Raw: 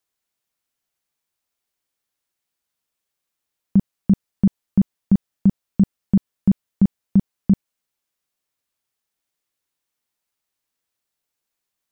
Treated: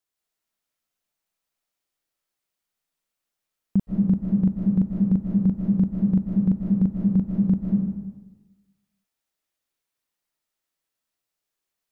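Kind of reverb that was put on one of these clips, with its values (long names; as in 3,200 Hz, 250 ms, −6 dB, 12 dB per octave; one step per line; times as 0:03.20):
comb and all-pass reverb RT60 1.2 s, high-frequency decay 0.6×, pre-delay 115 ms, DRR −2 dB
level −5.5 dB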